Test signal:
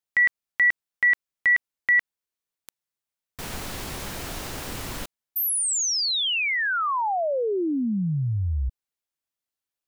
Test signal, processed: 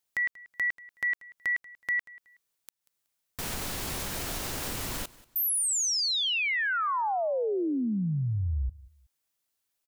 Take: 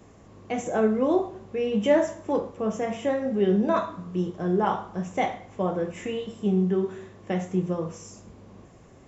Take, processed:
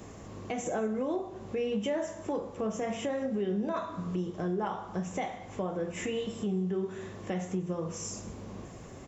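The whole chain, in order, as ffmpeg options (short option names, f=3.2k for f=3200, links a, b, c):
-filter_complex "[0:a]highshelf=f=5k:g=5,acompressor=threshold=-32dB:ratio=6:attack=0.55:release=278:knee=6:detection=rms,asplit=2[a][b];[b]aecho=0:1:186|372:0.0891|0.0241[c];[a][c]amix=inputs=2:normalize=0,volume=5dB"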